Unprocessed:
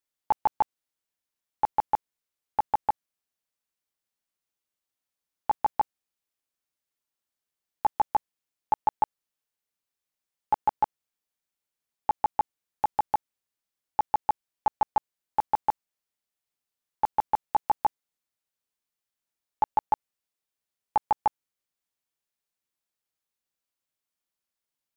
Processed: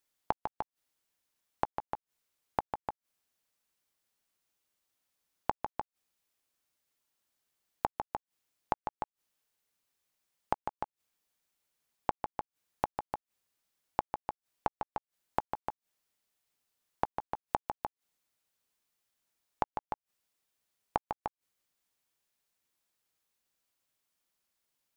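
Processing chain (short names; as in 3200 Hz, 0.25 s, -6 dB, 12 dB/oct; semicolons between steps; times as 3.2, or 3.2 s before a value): flipped gate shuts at -24 dBFS, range -25 dB; gain +5.5 dB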